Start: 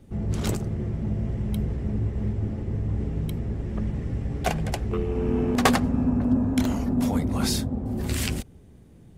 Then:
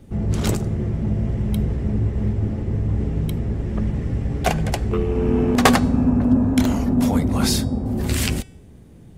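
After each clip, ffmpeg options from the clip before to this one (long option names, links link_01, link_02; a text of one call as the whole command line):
ffmpeg -i in.wav -af "bandreject=frequency=378.1:width_type=h:width=4,bandreject=frequency=756.2:width_type=h:width=4,bandreject=frequency=1134.3:width_type=h:width=4,bandreject=frequency=1512.4:width_type=h:width=4,bandreject=frequency=1890.5:width_type=h:width=4,bandreject=frequency=2268.6:width_type=h:width=4,bandreject=frequency=2646.7:width_type=h:width=4,bandreject=frequency=3024.8:width_type=h:width=4,bandreject=frequency=3402.9:width_type=h:width=4,bandreject=frequency=3781:width_type=h:width=4,bandreject=frequency=4159.1:width_type=h:width=4,bandreject=frequency=4537.2:width_type=h:width=4,bandreject=frequency=4915.3:width_type=h:width=4,bandreject=frequency=5293.4:width_type=h:width=4,bandreject=frequency=5671.5:width_type=h:width=4,bandreject=frequency=6049.6:width_type=h:width=4,bandreject=frequency=6427.7:width_type=h:width=4,bandreject=frequency=6805.8:width_type=h:width=4,bandreject=frequency=7183.9:width_type=h:width=4,bandreject=frequency=7562:width_type=h:width=4,bandreject=frequency=7940.1:width_type=h:width=4,bandreject=frequency=8318.2:width_type=h:width=4,bandreject=frequency=8696.3:width_type=h:width=4,bandreject=frequency=9074.4:width_type=h:width=4,bandreject=frequency=9452.5:width_type=h:width=4,bandreject=frequency=9830.6:width_type=h:width=4,volume=5.5dB" out.wav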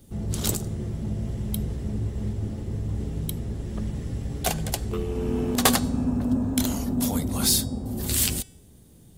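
ffmpeg -i in.wav -af "aexciter=amount=2:drive=8.4:freq=3200,highshelf=frequency=11000:gain=4.5,volume=-7.5dB" out.wav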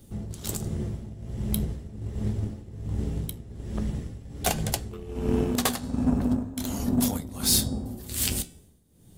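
ffmpeg -i in.wav -filter_complex "[0:a]flanger=delay=8.6:depth=8.4:regen=-69:speed=0.43:shape=triangular,asplit=2[link_01][link_02];[link_02]acrusher=bits=3:mix=0:aa=0.5,volume=-10.5dB[link_03];[link_01][link_03]amix=inputs=2:normalize=0,tremolo=f=1.3:d=0.79,volume=5dB" out.wav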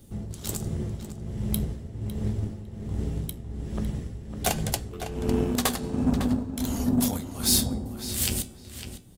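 ffmpeg -i in.wav -filter_complex "[0:a]asplit=2[link_01][link_02];[link_02]adelay=554,lowpass=frequency=3900:poles=1,volume=-9dB,asplit=2[link_03][link_04];[link_04]adelay=554,lowpass=frequency=3900:poles=1,volume=0.19,asplit=2[link_05][link_06];[link_06]adelay=554,lowpass=frequency=3900:poles=1,volume=0.19[link_07];[link_01][link_03][link_05][link_07]amix=inputs=4:normalize=0" out.wav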